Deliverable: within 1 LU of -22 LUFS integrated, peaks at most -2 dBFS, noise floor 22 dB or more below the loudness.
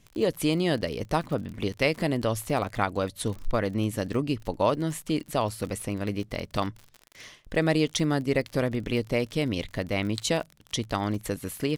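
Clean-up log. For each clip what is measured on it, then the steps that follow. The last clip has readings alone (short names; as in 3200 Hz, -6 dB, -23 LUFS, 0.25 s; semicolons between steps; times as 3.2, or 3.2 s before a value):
ticks 41/s; loudness -28.5 LUFS; peak -9.0 dBFS; loudness target -22.0 LUFS
-> de-click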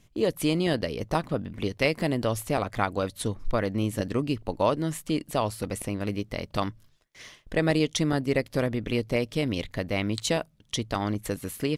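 ticks 0.34/s; loudness -28.5 LUFS; peak -9.0 dBFS; loudness target -22.0 LUFS
-> gain +6.5 dB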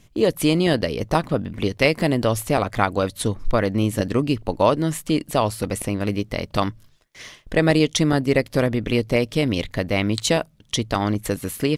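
loudness -22.0 LUFS; peak -2.5 dBFS; noise floor -55 dBFS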